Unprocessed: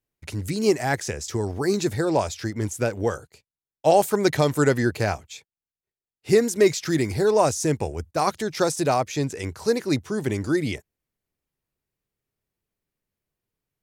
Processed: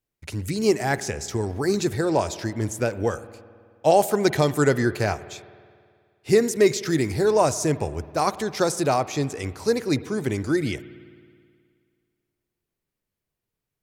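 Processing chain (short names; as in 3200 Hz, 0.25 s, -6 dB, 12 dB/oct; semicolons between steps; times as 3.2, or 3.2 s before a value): spring tank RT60 2.1 s, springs 53 ms, chirp 75 ms, DRR 15.5 dB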